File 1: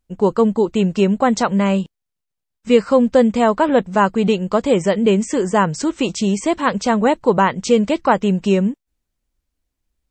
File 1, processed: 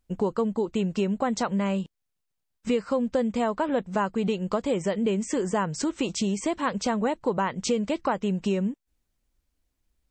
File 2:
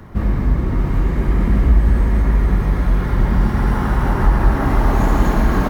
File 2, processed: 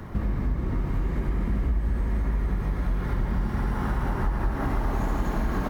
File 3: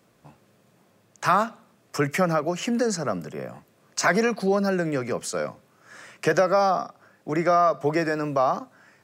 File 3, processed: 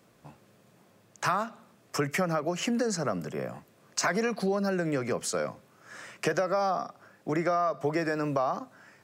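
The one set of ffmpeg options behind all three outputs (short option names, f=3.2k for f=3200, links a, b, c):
-af "acompressor=threshold=-26dB:ratio=3"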